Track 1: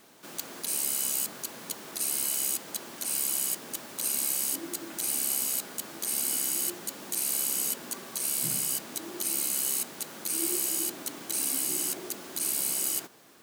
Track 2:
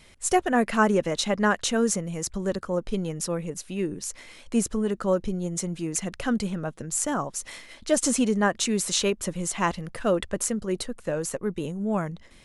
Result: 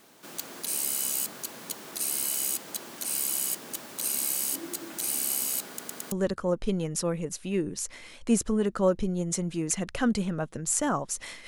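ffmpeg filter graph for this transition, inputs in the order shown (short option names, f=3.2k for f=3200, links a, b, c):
-filter_complex "[0:a]apad=whole_dur=11.47,atrim=end=11.47,asplit=4[a][b][c][d];[a]atrim=end=5.792[e];[b]atrim=start=5.678:end=5.792[f];[c]atrim=start=5.678:end=5.792[g];[d]atrim=start=5.678:end=5.792[h];[1:a]atrim=start=2.368:end=7.72[i];[e][f]acrossfade=d=0.004:c1=hsin:c2=hsin[j];[j][g]acrossfade=d=0.004:c1=hsin:c2=hsin[k];[k][h]acrossfade=d=0.004:c1=hsin:c2=hsin[l];[l][i]acrossfade=d=0.004:c1=hsin:c2=hsin"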